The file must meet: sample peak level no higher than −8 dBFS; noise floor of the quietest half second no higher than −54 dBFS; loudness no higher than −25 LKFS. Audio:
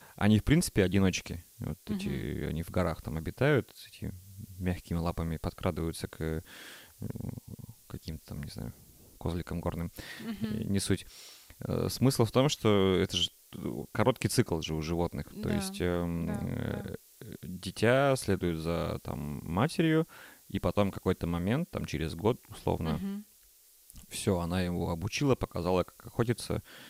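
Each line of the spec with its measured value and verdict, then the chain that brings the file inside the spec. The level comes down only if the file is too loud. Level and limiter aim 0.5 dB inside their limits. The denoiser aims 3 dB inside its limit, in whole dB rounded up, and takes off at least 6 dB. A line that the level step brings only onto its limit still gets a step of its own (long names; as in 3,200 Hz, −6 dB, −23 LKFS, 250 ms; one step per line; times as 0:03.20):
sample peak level −10.0 dBFS: in spec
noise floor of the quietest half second −61 dBFS: in spec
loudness −31.5 LKFS: in spec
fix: no processing needed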